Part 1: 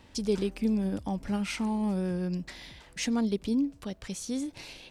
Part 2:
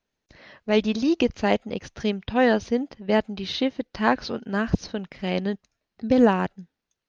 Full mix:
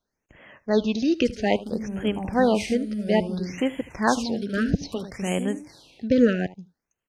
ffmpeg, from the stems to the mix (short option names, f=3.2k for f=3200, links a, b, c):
-filter_complex "[0:a]acompressor=threshold=-30dB:ratio=6,highpass=56,dynaudnorm=f=100:g=13:m=11dB,adelay=1100,volume=-8dB,asplit=2[a][b];[b]volume=-6dB[c];[1:a]volume=-0.5dB,asplit=2[d][e];[e]volume=-19dB[f];[c][f]amix=inputs=2:normalize=0,aecho=0:1:76:1[g];[a][d][g]amix=inputs=3:normalize=0,afftfilt=real='re*(1-between(b*sr/1024,880*pow(4800/880,0.5+0.5*sin(2*PI*0.6*pts/sr))/1.41,880*pow(4800/880,0.5+0.5*sin(2*PI*0.6*pts/sr))*1.41))':imag='im*(1-between(b*sr/1024,880*pow(4800/880,0.5+0.5*sin(2*PI*0.6*pts/sr))/1.41,880*pow(4800/880,0.5+0.5*sin(2*PI*0.6*pts/sr))*1.41))':win_size=1024:overlap=0.75"